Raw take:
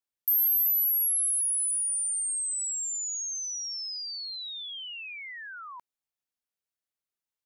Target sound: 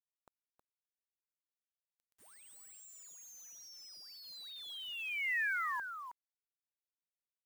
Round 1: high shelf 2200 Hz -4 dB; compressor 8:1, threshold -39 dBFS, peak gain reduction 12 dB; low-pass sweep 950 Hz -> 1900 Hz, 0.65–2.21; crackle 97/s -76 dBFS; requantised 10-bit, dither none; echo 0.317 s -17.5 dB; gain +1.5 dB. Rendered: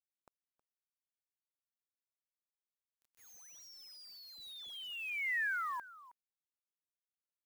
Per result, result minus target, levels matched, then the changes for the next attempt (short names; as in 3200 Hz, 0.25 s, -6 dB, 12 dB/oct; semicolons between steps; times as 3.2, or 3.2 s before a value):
compressor: peak gain reduction +7.5 dB; echo-to-direct -10 dB
change: compressor 8:1, threshold -30.5 dBFS, peak gain reduction 4.5 dB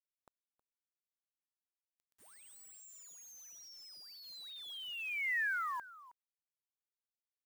echo-to-direct -10 dB
change: echo 0.317 s -7.5 dB